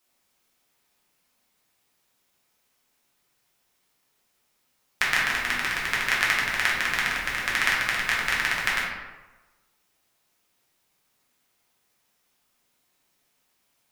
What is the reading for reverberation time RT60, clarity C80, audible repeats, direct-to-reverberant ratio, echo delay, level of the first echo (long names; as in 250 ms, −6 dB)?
1.2 s, 4.5 dB, no echo audible, −6.0 dB, no echo audible, no echo audible